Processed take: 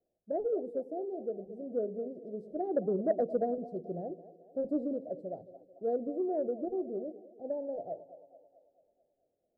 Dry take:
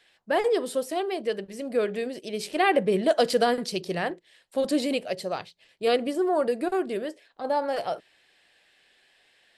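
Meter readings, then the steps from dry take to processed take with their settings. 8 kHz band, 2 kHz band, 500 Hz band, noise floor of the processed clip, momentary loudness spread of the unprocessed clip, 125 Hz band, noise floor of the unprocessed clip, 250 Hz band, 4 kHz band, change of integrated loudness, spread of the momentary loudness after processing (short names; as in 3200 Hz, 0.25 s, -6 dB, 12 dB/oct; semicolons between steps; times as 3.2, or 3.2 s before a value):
under -40 dB, under -30 dB, -8.0 dB, -82 dBFS, 11 LU, -7.5 dB, -64 dBFS, -7.0 dB, under -40 dB, -8.5 dB, 12 LU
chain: elliptic low-pass 670 Hz, stop band 40 dB; split-band echo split 330 Hz, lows 0.107 s, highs 0.219 s, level -14 dB; added harmonics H 3 -25 dB, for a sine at -10.5 dBFS; gain -6 dB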